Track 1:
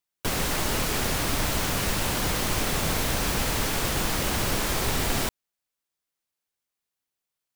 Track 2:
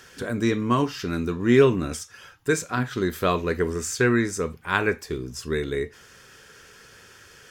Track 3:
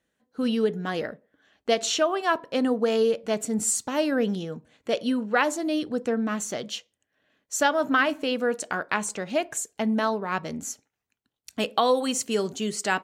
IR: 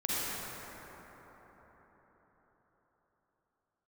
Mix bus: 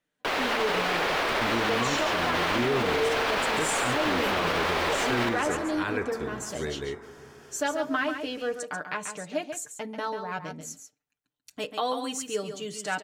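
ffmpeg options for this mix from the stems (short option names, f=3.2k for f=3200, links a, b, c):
-filter_complex "[0:a]acrossover=split=370 3900:gain=0.0708 1 0.0708[a][b][c];[a][b][c]amix=inputs=3:normalize=0,volume=3dB,asplit=2[d][e];[e]volume=-12dB[f];[1:a]adelay=1100,volume=-7.5dB,asplit=2[g][h];[h]volume=-21.5dB[i];[2:a]aecho=1:1:6.7:0.69,volume=-7.5dB,asplit=2[j][k];[k]volume=-8dB[l];[3:a]atrim=start_sample=2205[m];[f][i]amix=inputs=2:normalize=0[n];[n][m]afir=irnorm=-1:irlink=0[o];[l]aecho=0:1:139:1[p];[d][g][j][o][p]amix=inputs=5:normalize=0,alimiter=limit=-17dB:level=0:latency=1:release=21"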